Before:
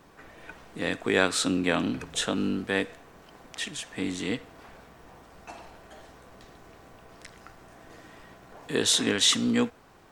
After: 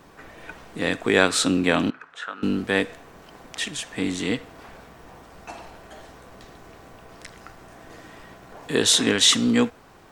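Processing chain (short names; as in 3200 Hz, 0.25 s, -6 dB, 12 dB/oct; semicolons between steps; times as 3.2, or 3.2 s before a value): 1.9–2.43 band-pass 1400 Hz, Q 3; gain +5 dB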